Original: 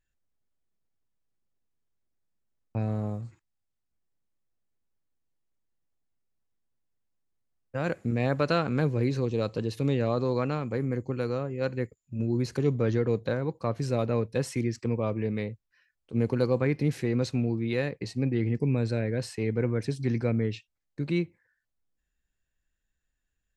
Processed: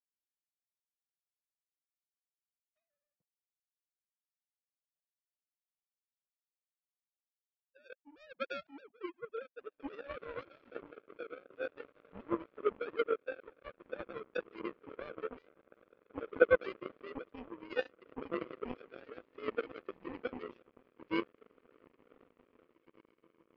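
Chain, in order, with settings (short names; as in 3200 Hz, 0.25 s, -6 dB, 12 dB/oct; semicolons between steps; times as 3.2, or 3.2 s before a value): sine-wave speech; diffused feedback echo 1.996 s, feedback 60%, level -7.5 dB; power-law curve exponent 3; gain +3 dB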